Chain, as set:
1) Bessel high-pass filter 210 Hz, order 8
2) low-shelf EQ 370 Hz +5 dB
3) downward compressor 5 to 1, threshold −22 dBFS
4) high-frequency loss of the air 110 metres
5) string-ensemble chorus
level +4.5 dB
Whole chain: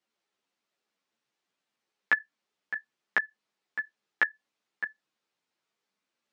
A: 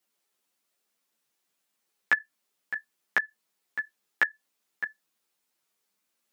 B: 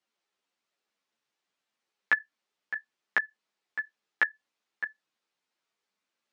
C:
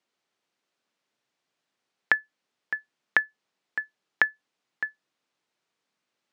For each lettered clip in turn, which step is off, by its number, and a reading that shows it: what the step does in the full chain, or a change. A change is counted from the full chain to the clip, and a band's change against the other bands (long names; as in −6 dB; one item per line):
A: 4, 4 kHz band +2.0 dB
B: 2, 250 Hz band −2.0 dB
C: 5, change in crest factor +3.0 dB